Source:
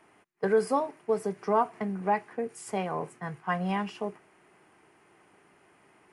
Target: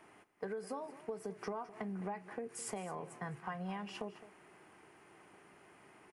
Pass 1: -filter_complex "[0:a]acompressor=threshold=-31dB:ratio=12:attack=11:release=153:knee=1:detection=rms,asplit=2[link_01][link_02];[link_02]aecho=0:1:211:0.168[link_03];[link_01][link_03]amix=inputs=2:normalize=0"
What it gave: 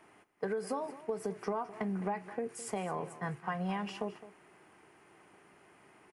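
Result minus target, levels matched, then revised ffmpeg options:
downward compressor: peak gain reduction −6.5 dB
-filter_complex "[0:a]acompressor=threshold=-38dB:ratio=12:attack=11:release=153:knee=1:detection=rms,asplit=2[link_01][link_02];[link_02]aecho=0:1:211:0.168[link_03];[link_01][link_03]amix=inputs=2:normalize=0"

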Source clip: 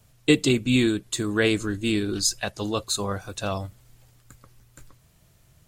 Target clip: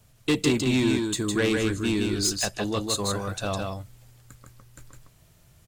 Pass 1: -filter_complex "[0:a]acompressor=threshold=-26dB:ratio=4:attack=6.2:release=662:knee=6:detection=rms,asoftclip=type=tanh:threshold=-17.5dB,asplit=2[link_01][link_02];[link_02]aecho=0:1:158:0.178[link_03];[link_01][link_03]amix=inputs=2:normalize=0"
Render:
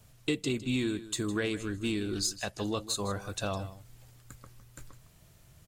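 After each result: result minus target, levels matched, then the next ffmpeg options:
downward compressor: peak gain reduction +12.5 dB; echo-to-direct −11.5 dB
-filter_complex "[0:a]asoftclip=type=tanh:threshold=-17.5dB,asplit=2[link_01][link_02];[link_02]aecho=0:1:158:0.178[link_03];[link_01][link_03]amix=inputs=2:normalize=0"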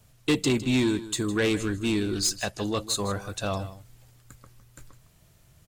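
echo-to-direct −11.5 dB
-filter_complex "[0:a]asoftclip=type=tanh:threshold=-17.5dB,asplit=2[link_01][link_02];[link_02]aecho=0:1:158:0.668[link_03];[link_01][link_03]amix=inputs=2:normalize=0"

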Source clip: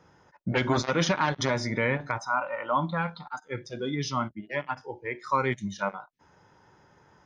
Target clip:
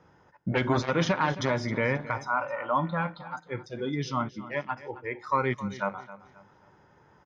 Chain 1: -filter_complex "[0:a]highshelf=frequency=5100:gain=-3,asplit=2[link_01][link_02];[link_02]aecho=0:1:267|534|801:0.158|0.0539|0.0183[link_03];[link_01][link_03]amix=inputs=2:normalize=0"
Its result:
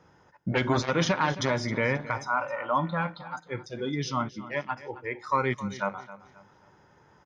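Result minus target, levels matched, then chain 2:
8,000 Hz band +4.5 dB
-filter_complex "[0:a]highshelf=frequency=5100:gain=-11.5,asplit=2[link_01][link_02];[link_02]aecho=0:1:267|534|801:0.158|0.0539|0.0183[link_03];[link_01][link_03]amix=inputs=2:normalize=0"

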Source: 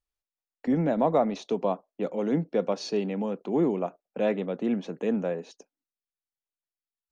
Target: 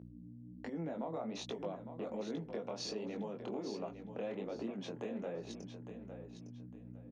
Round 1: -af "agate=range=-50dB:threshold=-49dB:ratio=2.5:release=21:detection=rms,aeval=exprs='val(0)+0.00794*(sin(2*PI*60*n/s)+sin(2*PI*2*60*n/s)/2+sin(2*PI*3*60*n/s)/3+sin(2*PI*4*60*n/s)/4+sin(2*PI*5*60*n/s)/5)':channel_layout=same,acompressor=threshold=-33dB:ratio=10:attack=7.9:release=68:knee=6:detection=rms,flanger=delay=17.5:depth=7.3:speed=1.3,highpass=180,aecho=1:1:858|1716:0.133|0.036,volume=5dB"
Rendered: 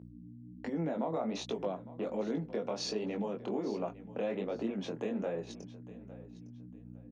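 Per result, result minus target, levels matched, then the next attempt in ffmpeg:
downward compressor: peak gain reduction −6.5 dB; echo-to-direct −8 dB
-af "agate=range=-50dB:threshold=-49dB:ratio=2.5:release=21:detection=rms,aeval=exprs='val(0)+0.00794*(sin(2*PI*60*n/s)+sin(2*PI*2*60*n/s)/2+sin(2*PI*3*60*n/s)/3+sin(2*PI*4*60*n/s)/4+sin(2*PI*5*60*n/s)/5)':channel_layout=same,acompressor=threshold=-40dB:ratio=10:attack=7.9:release=68:knee=6:detection=rms,flanger=delay=17.5:depth=7.3:speed=1.3,highpass=180,aecho=1:1:858|1716:0.133|0.036,volume=5dB"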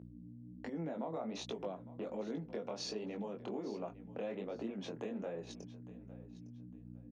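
echo-to-direct −8 dB
-af "agate=range=-50dB:threshold=-49dB:ratio=2.5:release=21:detection=rms,aeval=exprs='val(0)+0.00794*(sin(2*PI*60*n/s)+sin(2*PI*2*60*n/s)/2+sin(2*PI*3*60*n/s)/3+sin(2*PI*4*60*n/s)/4+sin(2*PI*5*60*n/s)/5)':channel_layout=same,acompressor=threshold=-40dB:ratio=10:attack=7.9:release=68:knee=6:detection=rms,flanger=delay=17.5:depth=7.3:speed=1.3,highpass=180,aecho=1:1:858|1716|2574:0.335|0.0904|0.0244,volume=5dB"

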